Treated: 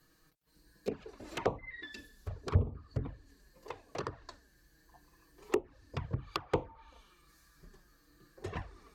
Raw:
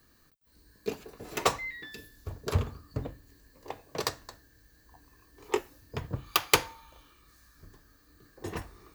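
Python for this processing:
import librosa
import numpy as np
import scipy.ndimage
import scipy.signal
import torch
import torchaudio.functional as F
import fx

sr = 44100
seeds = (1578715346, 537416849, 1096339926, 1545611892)

y = fx.env_lowpass_down(x, sr, base_hz=770.0, full_db=-27.0)
y = fx.env_flanger(y, sr, rest_ms=6.7, full_db=-27.5)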